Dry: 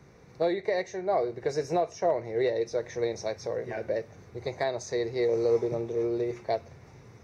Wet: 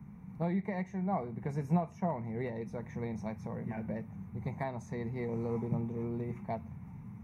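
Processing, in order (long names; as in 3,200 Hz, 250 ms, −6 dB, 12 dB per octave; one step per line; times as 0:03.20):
drawn EQ curve 130 Hz 0 dB, 200 Hz +12 dB, 350 Hz −15 dB, 580 Hz −18 dB, 900 Hz −3 dB, 1,600 Hz −14 dB, 2,300 Hz −10 dB, 4,800 Hz −29 dB, 11,000 Hz −4 dB
level +3 dB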